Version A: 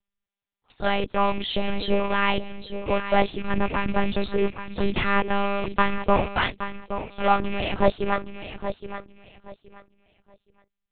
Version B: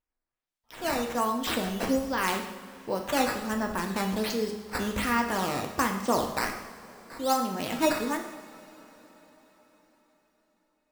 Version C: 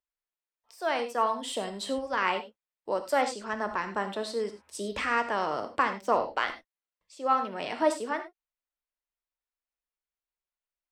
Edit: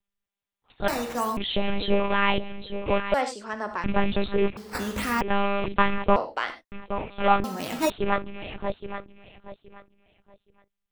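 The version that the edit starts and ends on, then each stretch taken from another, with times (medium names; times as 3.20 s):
A
0.88–1.37 s: from B
3.14–3.84 s: from C
4.57–5.21 s: from B
6.16–6.72 s: from C
7.44–7.90 s: from B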